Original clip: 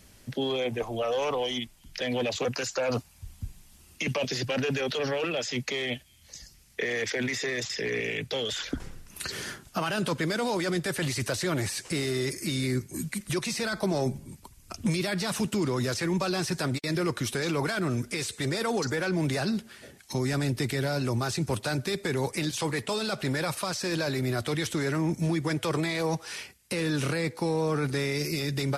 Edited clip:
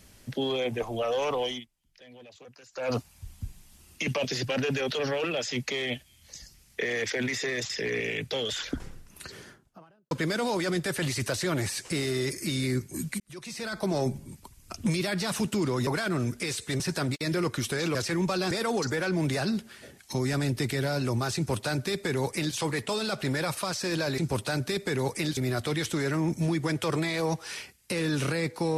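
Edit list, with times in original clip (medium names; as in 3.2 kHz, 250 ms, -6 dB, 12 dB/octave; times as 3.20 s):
1.47–2.91 s: dip -21.5 dB, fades 0.19 s
8.59–10.11 s: studio fade out
13.20–13.97 s: fade in
15.87–16.43 s: swap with 17.58–18.51 s
21.36–22.55 s: copy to 24.18 s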